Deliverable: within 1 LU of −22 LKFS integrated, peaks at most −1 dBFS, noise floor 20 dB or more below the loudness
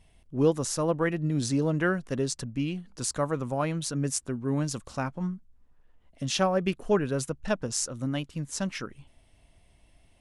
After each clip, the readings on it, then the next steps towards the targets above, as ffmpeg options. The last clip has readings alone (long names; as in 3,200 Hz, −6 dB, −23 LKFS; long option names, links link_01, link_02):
integrated loudness −29.5 LKFS; sample peak −11.0 dBFS; target loudness −22.0 LKFS
→ -af "volume=7.5dB"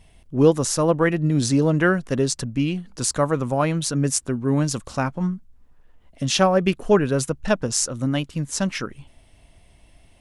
integrated loudness −22.0 LKFS; sample peak −3.5 dBFS; background noise floor −54 dBFS